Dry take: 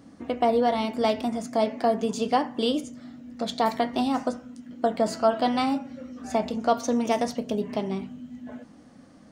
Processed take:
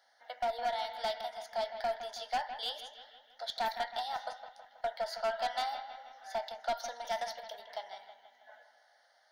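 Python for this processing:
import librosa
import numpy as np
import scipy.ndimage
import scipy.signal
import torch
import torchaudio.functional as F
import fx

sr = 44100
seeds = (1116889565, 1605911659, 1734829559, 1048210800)

p1 = scipy.signal.sosfilt(scipy.signal.butter(4, 780.0, 'highpass', fs=sr, output='sos'), x)
p2 = fx.fixed_phaser(p1, sr, hz=1700.0, stages=8)
p3 = fx.clip_asym(p2, sr, top_db=-27.0, bottom_db=-22.0)
p4 = p3 + fx.echo_bbd(p3, sr, ms=161, stages=4096, feedback_pct=55, wet_db=-10, dry=0)
y = p4 * 10.0 ** (-3.0 / 20.0)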